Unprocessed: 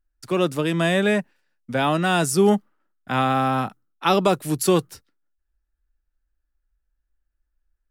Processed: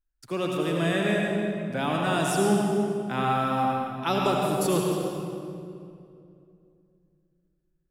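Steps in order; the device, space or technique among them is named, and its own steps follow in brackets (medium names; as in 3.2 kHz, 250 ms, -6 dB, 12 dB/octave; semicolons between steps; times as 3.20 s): stairwell (reverberation RT60 2.6 s, pre-delay 71 ms, DRR -1.5 dB); trim -8 dB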